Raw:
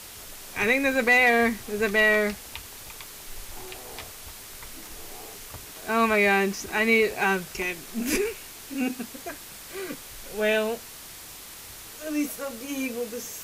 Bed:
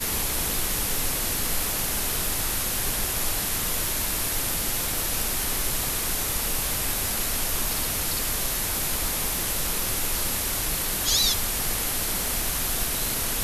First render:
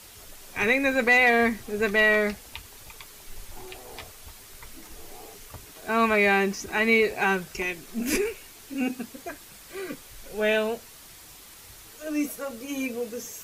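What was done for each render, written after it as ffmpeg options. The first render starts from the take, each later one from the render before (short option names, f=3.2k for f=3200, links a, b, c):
-af "afftdn=nr=6:nf=-43"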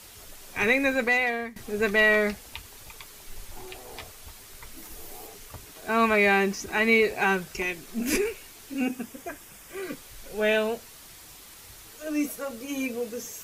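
-filter_complex "[0:a]asettb=1/sr,asplit=3[a][b][c];[a]atrim=end=4.774[d];[b]atrim=start=4.77:end=5.27,asetpts=PTS-STARTPTS,afade=t=in:d=0.004:c=qsin,afade=t=out:st=0.496:d=0.004:c=qsin,highshelf=f=12k:g=9[e];[c]atrim=start=5.266[f];[d][e]acrossfade=d=0.004:c1=hsin:c2=qsin[g];[g][f]acrossfade=d=0.004:c1=qsin:c2=hsin,asettb=1/sr,asplit=3[h][i][j];[h]atrim=end=8.854[k];[i]atrim=start=8.85:end=9.83,asetpts=PTS-STARTPTS,afade=t=in:d=0.004:c=qsin,afade=t=out:st=0.976:d=0.004:c=qsin,equalizer=f=4.2k:w=4.8:g=-11[l];[j]atrim=start=9.826[m];[k][l]acrossfade=d=0.004:c1=hsin:c2=qsin[n];[n][m]acrossfade=d=0.004:c1=qsin:c2=hsin,asplit=2[o][p];[o]atrim=end=1.56,asetpts=PTS-STARTPTS,afade=t=out:st=0.83:d=0.73:silence=0.0891251[q];[p]atrim=start=1.56,asetpts=PTS-STARTPTS,afade=t=in:d=0.004:c=hsin:silence=0.0891251[r];[q][r]concat=n=2:v=0:a=1"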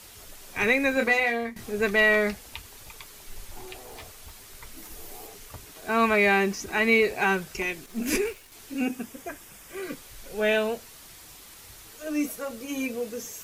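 -filter_complex "[0:a]asettb=1/sr,asplit=3[a][b][c];[a]atrim=end=0.944[d];[b]atrim=start=0.94:end=1.7,asetpts=PTS-STARTPTS,afade=t=in:d=0.004:c=qsin,afade=t=out:st=0.756:d=0.004:c=qsin,asplit=2[e][f];[f]adelay=26,volume=-5dB[g];[e][g]amix=inputs=2:normalize=0,atrim=end_sample=33516[h];[c]atrim=start=1.696[i];[d][h]acrossfade=d=0.004:c1=hsin:c2=qsin[j];[j][i]acrossfade=d=0.004:c1=qsin:c2=hsin,asettb=1/sr,asplit=3[k][l][m];[k]atrim=end=3.864[n];[l]atrim=start=3.86:end=4.52,asetpts=PTS-STARTPTS,afade=t=in:d=0.004:c=qsin,afade=t=out:st=0.656:d=0.004:c=qsin,asoftclip=type=hard:threshold=-37.5dB[o];[m]atrim=start=4.516[p];[n][o]acrossfade=d=0.004:c1=hsin:c2=qsin[q];[q][p]acrossfade=d=0.004:c1=qsin:c2=hsin,asettb=1/sr,asplit=3[r][s][t];[r]atrim=end=7.864[u];[s]atrim=start=7.86:end=8.52,asetpts=PTS-STARTPTS,afade=t=in:d=0.004:c=qsin,afade=t=out:st=0.656:d=0.004:c=qsin,aeval=exprs='sgn(val(0))*max(abs(val(0))-0.00316,0)':c=same[v];[t]atrim=start=8.516[w];[u][v]acrossfade=d=0.004:c1=hsin:c2=qsin[x];[x][w]acrossfade=d=0.004:c1=qsin:c2=hsin"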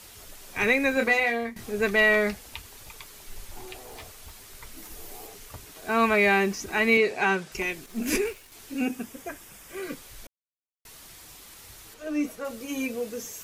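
-filter_complex "[0:a]asettb=1/sr,asplit=3[a][b][c];[a]atrim=end=6.974[d];[b]atrim=start=6.97:end=7.52,asetpts=PTS-STARTPTS,afade=t=in:d=0.004:c=qsin,afade=t=out:st=0.546:d=0.004:c=qsin,highpass=150,lowpass=7.9k[e];[c]atrim=start=7.516[f];[d][e]acrossfade=d=0.004:c1=hsin:c2=qsin[g];[g][f]acrossfade=d=0.004:c1=qsin:c2=hsin,asettb=1/sr,asplit=3[h][i][j];[h]atrim=end=11.944[k];[i]atrim=start=11.94:end=12.45,asetpts=PTS-STARTPTS,afade=t=in:d=0.004:c=qsin,afade=t=out:st=0.506:d=0.004:c=qsin,lowpass=f=3.4k:p=1[l];[j]atrim=start=12.446[m];[k][l]acrossfade=d=0.004:c1=hsin:c2=qsin[n];[n][m]acrossfade=d=0.004:c1=qsin:c2=hsin,asplit=3[o][p][q];[o]atrim=end=10.27,asetpts=PTS-STARTPTS,afade=t=out:st=10.266:d=0.004:c=hsin[r];[p]atrim=start=10.27:end=10.85,asetpts=PTS-STARTPTS,volume=0[s];[q]atrim=start=10.85,asetpts=PTS-STARTPTS,afade=t=in:d=0.004:c=hsin[t];[r][s][t]concat=n=3:v=0:a=1"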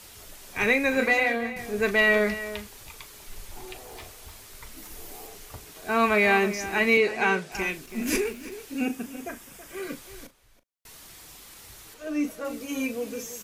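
-filter_complex "[0:a]asplit=2[a][b];[b]adelay=38,volume=-13dB[c];[a][c]amix=inputs=2:normalize=0,asplit=2[d][e];[e]adelay=326.5,volume=-13dB,highshelf=f=4k:g=-7.35[f];[d][f]amix=inputs=2:normalize=0"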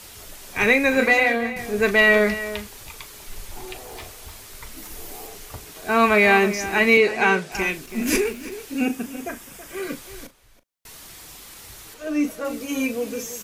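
-af "volume=5dB"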